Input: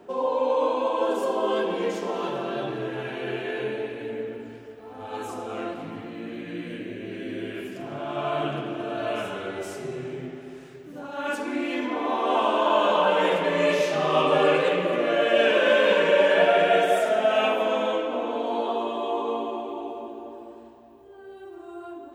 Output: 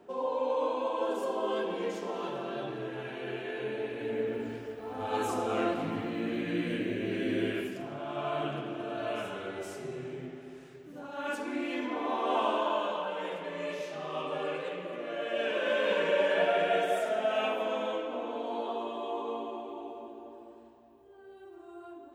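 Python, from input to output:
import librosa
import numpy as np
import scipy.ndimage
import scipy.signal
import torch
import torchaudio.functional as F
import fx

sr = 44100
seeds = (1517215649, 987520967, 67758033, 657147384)

y = fx.gain(x, sr, db=fx.line((3.59, -7.0), (4.43, 2.5), (7.48, 2.5), (7.96, -6.0), (12.51, -6.0), (13.07, -14.5), (15.03, -14.5), (16.0, -8.0)))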